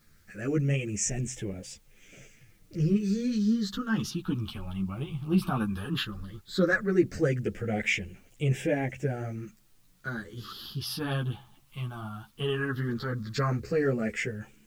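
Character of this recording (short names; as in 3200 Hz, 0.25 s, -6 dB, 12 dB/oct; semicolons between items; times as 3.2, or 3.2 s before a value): phasing stages 6, 0.15 Hz, lowest notch 490–1200 Hz; a quantiser's noise floor 12-bit, dither triangular; a shimmering, thickened sound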